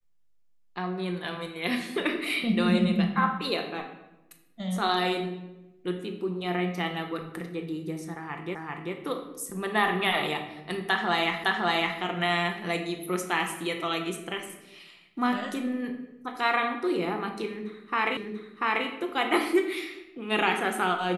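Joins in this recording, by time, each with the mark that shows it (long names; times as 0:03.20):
0:08.55: the same again, the last 0.39 s
0:11.44: the same again, the last 0.56 s
0:18.17: the same again, the last 0.69 s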